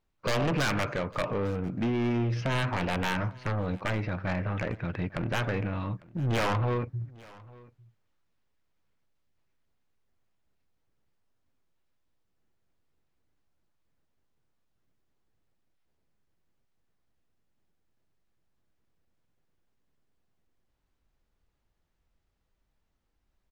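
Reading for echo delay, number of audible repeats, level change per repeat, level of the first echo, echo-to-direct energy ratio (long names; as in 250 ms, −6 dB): 850 ms, 1, repeats not evenly spaced, −23.0 dB, −23.0 dB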